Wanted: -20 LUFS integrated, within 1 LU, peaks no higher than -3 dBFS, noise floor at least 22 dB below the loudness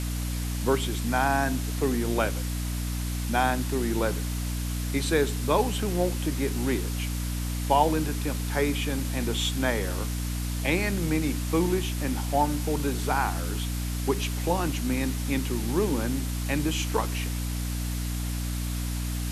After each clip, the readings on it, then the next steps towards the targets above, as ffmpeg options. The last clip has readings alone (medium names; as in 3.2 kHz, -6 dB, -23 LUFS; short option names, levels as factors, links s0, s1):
hum 60 Hz; highest harmonic 300 Hz; hum level -28 dBFS; noise floor -30 dBFS; noise floor target -50 dBFS; loudness -27.5 LUFS; peak level -8.0 dBFS; loudness target -20.0 LUFS
-> -af "bandreject=f=60:t=h:w=6,bandreject=f=120:t=h:w=6,bandreject=f=180:t=h:w=6,bandreject=f=240:t=h:w=6,bandreject=f=300:t=h:w=6"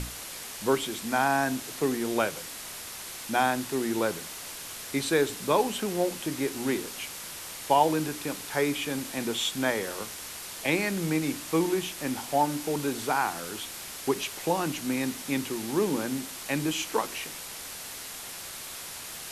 hum not found; noise floor -40 dBFS; noise floor target -52 dBFS
-> -af "afftdn=nr=12:nf=-40"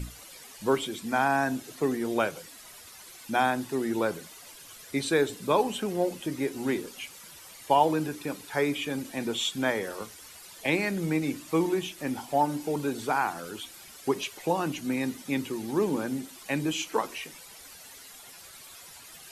noise floor -49 dBFS; noise floor target -51 dBFS
-> -af "afftdn=nr=6:nf=-49"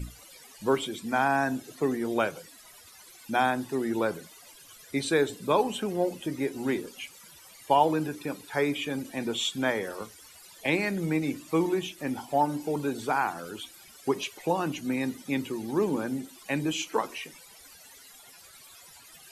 noise floor -52 dBFS; loudness -29.0 LUFS; peak level -9.0 dBFS; loudness target -20.0 LUFS
-> -af "volume=2.82,alimiter=limit=0.708:level=0:latency=1"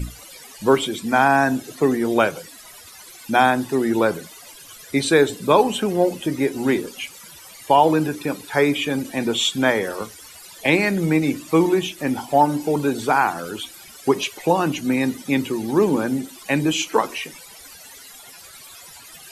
loudness -20.5 LUFS; peak level -3.0 dBFS; noise floor -43 dBFS